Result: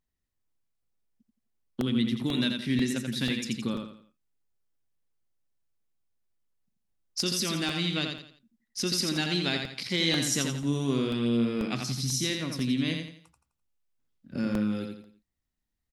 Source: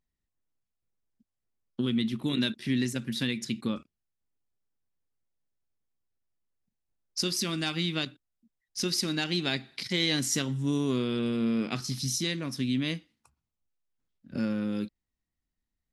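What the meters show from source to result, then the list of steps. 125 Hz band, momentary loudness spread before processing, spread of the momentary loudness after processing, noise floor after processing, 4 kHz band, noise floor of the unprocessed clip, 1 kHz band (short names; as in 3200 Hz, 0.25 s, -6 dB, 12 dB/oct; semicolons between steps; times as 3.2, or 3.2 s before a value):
+1.5 dB, 7 LU, 10 LU, -82 dBFS, +1.5 dB, under -85 dBFS, +1.5 dB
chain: feedback echo 85 ms, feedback 36%, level -5 dB; crackling interface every 0.49 s, samples 64, repeat, from 0.83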